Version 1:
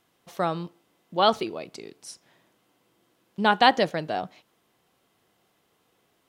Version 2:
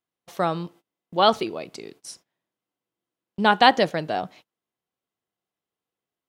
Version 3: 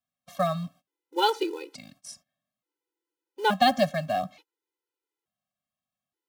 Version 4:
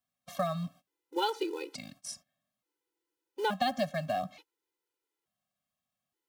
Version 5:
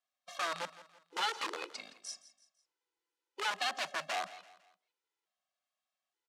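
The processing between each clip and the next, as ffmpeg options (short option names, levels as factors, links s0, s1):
-af "agate=range=0.0631:threshold=0.00316:ratio=16:detection=peak,volume=1.33"
-filter_complex "[0:a]acrossover=split=270|790|3000[s0][s1][s2][s3];[s1]acrusher=bits=4:mode=log:mix=0:aa=0.000001[s4];[s2]alimiter=limit=0.158:level=0:latency=1[s5];[s0][s4][s5][s3]amix=inputs=4:normalize=0,afftfilt=real='re*gt(sin(2*PI*0.57*pts/sr)*(1-2*mod(floor(b*sr/1024/260),2)),0)':imag='im*gt(sin(2*PI*0.57*pts/sr)*(1-2*mod(floor(b*sr/1024/260),2)),0)':win_size=1024:overlap=0.75"
-af "acompressor=threshold=0.0224:ratio=2.5,volume=1.19"
-filter_complex "[0:a]acrossover=split=840[s0][s1];[s0]aeval=exprs='(mod(35.5*val(0)+1,2)-1)/35.5':c=same[s2];[s2][s1]amix=inputs=2:normalize=0,highpass=560,lowpass=6800,aecho=1:1:167|334|501:0.141|0.0579|0.0237"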